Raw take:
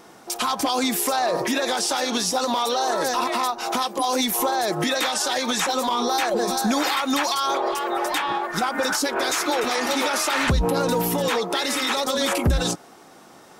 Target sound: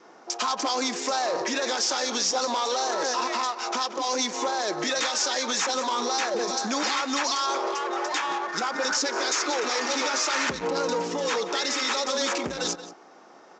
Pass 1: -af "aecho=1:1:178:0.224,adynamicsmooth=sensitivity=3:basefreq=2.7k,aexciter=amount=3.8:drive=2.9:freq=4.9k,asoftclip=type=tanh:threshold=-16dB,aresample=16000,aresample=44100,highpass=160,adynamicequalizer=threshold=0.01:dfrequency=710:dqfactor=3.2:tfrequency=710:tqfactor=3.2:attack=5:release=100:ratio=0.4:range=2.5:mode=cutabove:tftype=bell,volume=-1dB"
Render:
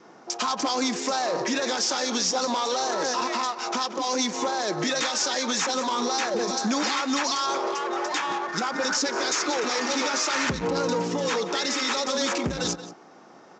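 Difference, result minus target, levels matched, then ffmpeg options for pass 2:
125 Hz band +8.5 dB
-af "aecho=1:1:178:0.224,adynamicsmooth=sensitivity=3:basefreq=2.7k,aexciter=amount=3.8:drive=2.9:freq=4.9k,asoftclip=type=tanh:threshold=-16dB,aresample=16000,aresample=44100,highpass=320,adynamicequalizer=threshold=0.01:dfrequency=710:dqfactor=3.2:tfrequency=710:tqfactor=3.2:attack=5:release=100:ratio=0.4:range=2.5:mode=cutabove:tftype=bell,volume=-1dB"

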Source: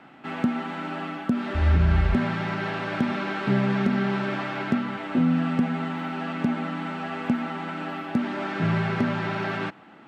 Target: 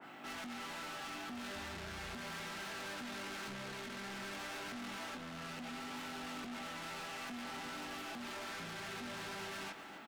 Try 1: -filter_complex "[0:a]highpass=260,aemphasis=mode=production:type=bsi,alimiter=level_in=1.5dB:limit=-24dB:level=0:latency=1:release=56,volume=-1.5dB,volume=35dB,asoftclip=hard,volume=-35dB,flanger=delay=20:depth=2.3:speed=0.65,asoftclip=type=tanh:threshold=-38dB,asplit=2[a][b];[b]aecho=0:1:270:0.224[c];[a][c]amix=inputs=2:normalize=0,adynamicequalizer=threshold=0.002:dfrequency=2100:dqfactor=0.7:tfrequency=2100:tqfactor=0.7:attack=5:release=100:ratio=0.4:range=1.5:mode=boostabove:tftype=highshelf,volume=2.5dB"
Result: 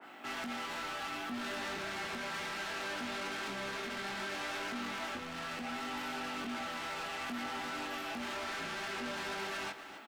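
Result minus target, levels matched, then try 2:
soft clip: distortion -9 dB; 125 Hz band -5.5 dB
-filter_complex "[0:a]highpass=65,aemphasis=mode=production:type=bsi,alimiter=level_in=1.5dB:limit=-24dB:level=0:latency=1:release=56,volume=-1.5dB,volume=35dB,asoftclip=hard,volume=-35dB,flanger=delay=20:depth=2.3:speed=0.65,asoftclip=type=tanh:threshold=-46.5dB,asplit=2[a][b];[b]aecho=0:1:270:0.224[c];[a][c]amix=inputs=2:normalize=0,adynamicequalizer=threshold=0.002:dfrequency=2100:dqfactor=0.7:tfrequency=2100:tqfactor=0.7:attack=5:release=100:ratio=0.4:range=1.5:mode=boostabove:tftype=highshelf,volume=2.5dB"

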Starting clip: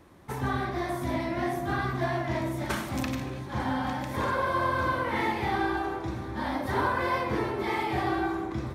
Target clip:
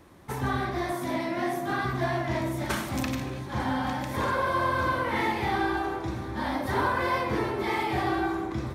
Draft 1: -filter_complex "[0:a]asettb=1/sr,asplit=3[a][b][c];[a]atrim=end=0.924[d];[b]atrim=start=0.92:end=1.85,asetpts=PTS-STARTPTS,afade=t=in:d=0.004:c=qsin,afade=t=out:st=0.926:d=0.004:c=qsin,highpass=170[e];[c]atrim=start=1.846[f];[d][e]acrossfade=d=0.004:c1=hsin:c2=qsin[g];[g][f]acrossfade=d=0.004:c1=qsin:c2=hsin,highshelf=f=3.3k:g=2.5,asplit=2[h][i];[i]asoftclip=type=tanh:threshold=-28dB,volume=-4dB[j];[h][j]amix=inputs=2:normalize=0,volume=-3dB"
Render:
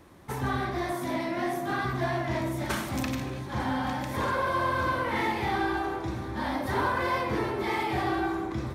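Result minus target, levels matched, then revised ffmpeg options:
soft clip: distortion +9 dB
-filter_complex "[0:a]asettb=1/sr,asplit=3[a][b][c];[a]atrim=end=0.924[d];[b]atrim=start=0.92:end=1.85,asetpts=PTS-STARTPTS,afade=t=in:d=0.004:c=qsin,afade=t=out:st=0.926:d=0.004:c=qsin,highpass=170[e];[c]atrim=start=1.846[f];[d][e]acrossfade=d=0.004:c1=hsin:c2=qsin[g];[g][f]acrossfade=d=0.004:c1=qsin:c2=hsin,highshelf=f=3.3k:g=2.5,asplit=2[h][i];[i]asoftclip=type=tanh:threshold=-20dB,volume=-4dB[j];[h][j]amix=inputs=2:normalize=0,volume=-3dB"

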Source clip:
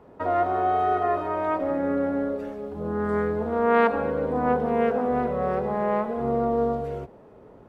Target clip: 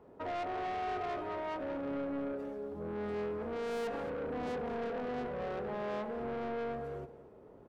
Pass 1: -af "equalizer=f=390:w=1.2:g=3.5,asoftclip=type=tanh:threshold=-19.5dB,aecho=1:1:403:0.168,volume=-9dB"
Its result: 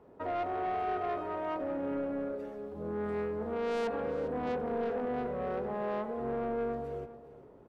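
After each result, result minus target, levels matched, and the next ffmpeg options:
echo 0.181 s late; soft clip: distortion -4 dB
-af "equalizer=f=390:w=1.2:g=3.5,asoftclip=type=tanh:threshold=-19.5dB,aecho=1:1:222:0.168,volume=-9dB"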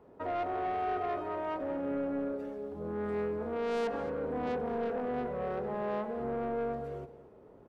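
soft clip: distortion -4 dB
-af "equalizer=f=390:w=1.2:g=3.5,asoftclip=type=tanh:threshold=-25.5dB,aecho=1:1:222:0.168,volume=-9dB"

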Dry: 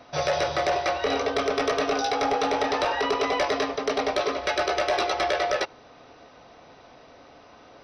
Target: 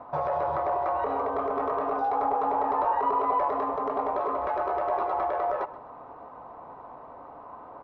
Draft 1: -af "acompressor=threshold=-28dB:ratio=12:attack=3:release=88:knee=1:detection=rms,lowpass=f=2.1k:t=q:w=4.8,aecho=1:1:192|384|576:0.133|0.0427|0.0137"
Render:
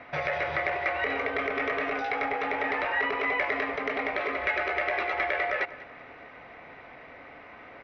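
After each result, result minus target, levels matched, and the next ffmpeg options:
2000 Hz band +17.0 dB; echo 65 ms late
-af "acompressor=threshold=-28dB:ratio=12:attack=3:release=88:knee=1:detection=rms,lowpass=f=1k:t=q:w=4.8,aecho=1:1:192|384|576:0.133|0.0427|0.0137"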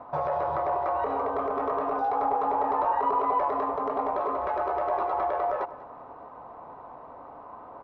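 echo 65 ms late
-af "acompressor=threshold=-28dB:ratio=12:attack=3:release=88:knee=1:detection=rms,lowpass=f=1k:t=q:w=4.8,aecho=1:1:127|254|381:0.133|0.0427|0.0137"

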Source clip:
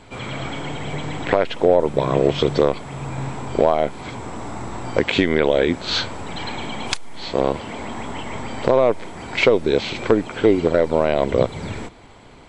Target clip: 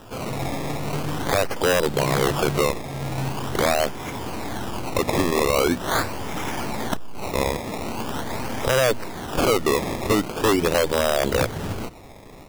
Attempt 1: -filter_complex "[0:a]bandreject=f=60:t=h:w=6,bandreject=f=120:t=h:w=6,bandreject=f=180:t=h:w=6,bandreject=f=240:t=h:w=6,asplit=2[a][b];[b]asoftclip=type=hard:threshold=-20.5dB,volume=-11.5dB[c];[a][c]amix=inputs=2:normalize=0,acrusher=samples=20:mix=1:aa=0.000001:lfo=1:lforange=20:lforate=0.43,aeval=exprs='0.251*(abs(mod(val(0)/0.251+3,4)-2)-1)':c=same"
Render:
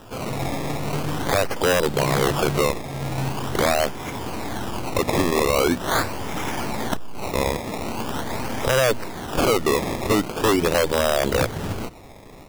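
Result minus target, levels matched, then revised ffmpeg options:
hard clip: distortion -5 dB
-filter_complex "[0:a]bandreject=f=60:t=h:w=6,bandreject=f=120:t=h:w=6,bandreject=f=180:t=h:w=6,bandreject=f=240:t=h:w=6,asplit=2[a][b];[b]asoftclip=type=hard:threshold=-32dB,volume=-11.5dB[c];[a][c]amix=inputs=2:normalize=0,acrusher=samples=20:mix=1:aa=0.000001:lfo=1:lforange=20:lforate=0.43,aeval=exprs='0.251*(abs(mod(val(0)/0.251+3,4)-2)-1)':c=same"

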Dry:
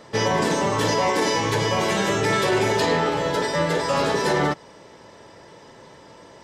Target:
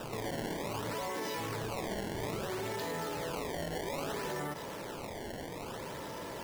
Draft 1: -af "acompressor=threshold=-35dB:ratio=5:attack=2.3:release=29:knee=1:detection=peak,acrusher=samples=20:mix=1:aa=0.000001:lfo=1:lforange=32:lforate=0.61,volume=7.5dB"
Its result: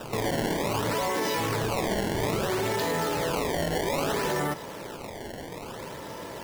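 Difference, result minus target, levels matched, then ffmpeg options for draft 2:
compressor: peak gain reduction -9.5 dB
-af "acompressor=threshold=-47dB:ratio=5:attack=2.3:release=29:knee=1:detection=peak,acrusher=samples=20:mix=1:aa=0.000001:lfo=1:lforange=32:lforate=0.61,volume=7.5dB"

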